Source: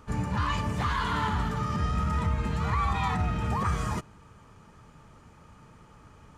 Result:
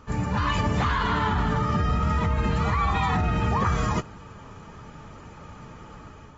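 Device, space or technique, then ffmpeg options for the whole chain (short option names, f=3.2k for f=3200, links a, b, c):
low-bitrate web radio: -filter_complex "[0:a]asettb=1/sr,asplit=3[a][b][c];[a]atrim=end=0.874[d];[b]atrim=start=0.87:end=2.03,asetpts=PTS-STARTPTS,afade=t=in:d=0.004:c=qsin,afade=t=out:st=1.156:d=0.004:c=qsin,highshelf=f=4k:g=-5[e];[c]atrim=start=2.026[f];[d][e]acrossfade=d=0.004:c1=hsin:c2=qsin[g];[g][f]acrossfade=d=0.004:c1=qsin:c2=hsin,dynaudnorm=f=180:g=5:m=6dB,alimiter=limit=-18.5dB:level=0:latency=1:release=109,volume=2.5dB" -ar 44100 -c:a aac -b:a 24k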